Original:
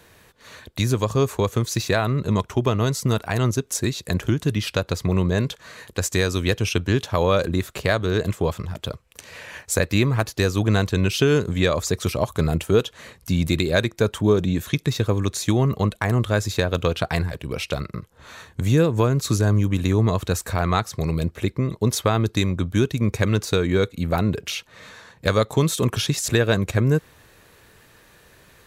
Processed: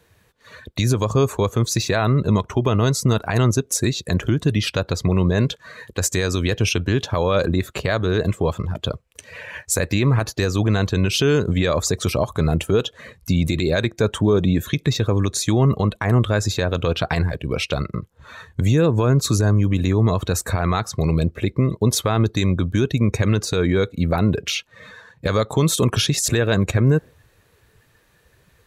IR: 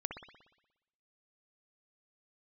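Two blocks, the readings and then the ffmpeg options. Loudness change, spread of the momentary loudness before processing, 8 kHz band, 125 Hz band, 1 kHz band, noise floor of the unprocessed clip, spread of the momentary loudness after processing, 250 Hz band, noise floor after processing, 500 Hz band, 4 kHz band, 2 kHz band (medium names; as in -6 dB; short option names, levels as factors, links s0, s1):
+2.0 dB, 8 LU, +4.0 dB, +2.5 dB, +1.0 dB, -54 dBFS, 6 LU, +2.0 dB, -59 dBFS, +1.0 dB, +2.5 dB, +0.5 dB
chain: -af "afftdn=nr=13:nf=-41,alimiter=limit=0.211:level=0:latency=1:release=50,volume=1.78"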